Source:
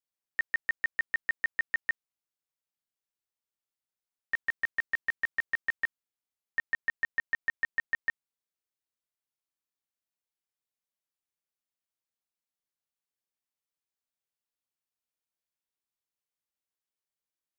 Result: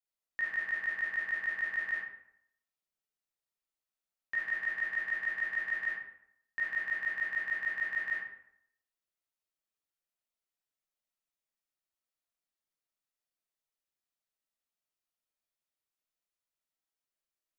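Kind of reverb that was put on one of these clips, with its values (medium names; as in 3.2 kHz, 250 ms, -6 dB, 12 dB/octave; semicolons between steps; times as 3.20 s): algorithmic reverb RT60 0.72 s, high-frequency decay 0.65×, pre-delay 10 ms, DRR -6 dB; trim -7.5 dB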